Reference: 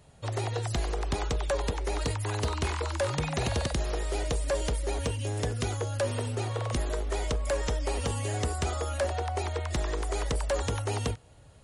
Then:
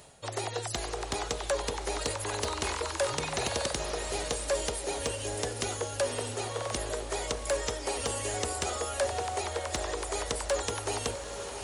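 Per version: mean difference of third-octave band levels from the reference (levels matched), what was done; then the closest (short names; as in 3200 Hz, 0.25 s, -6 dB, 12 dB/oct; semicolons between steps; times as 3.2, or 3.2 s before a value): 5.0 dB: diffused feedback echo 0.678 s, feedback 47%, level -9.5 dB; reverse; upward compressor, threshold -30 dBFS; reverse; tone controls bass -11 dB, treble +5 dB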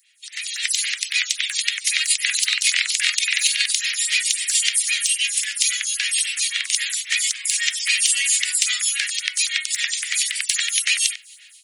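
21.5 dB: steep high-pass 2000 Hz 48 dB/oct; AGC gain up to 15 dB; maximiser +12.5 dB; photocell phaser 3.7 Hz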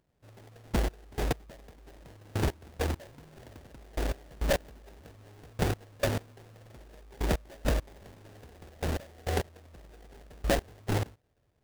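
13.5 dB: high shelf 4300 Hz +11 dB; in parallel at -2 dB: limiter -32.5 dBFS, peak gain reduction 18 dB; on the sum: step gate ".....x..x.." 102 bpm -24 dB; sample-rate reducer 1200 Hz, jitter 20%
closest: first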